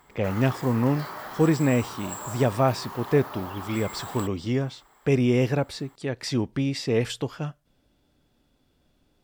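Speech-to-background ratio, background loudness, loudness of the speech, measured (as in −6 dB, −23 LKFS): 11.5 dB, −37.5 LKFS, −26.0 LKFS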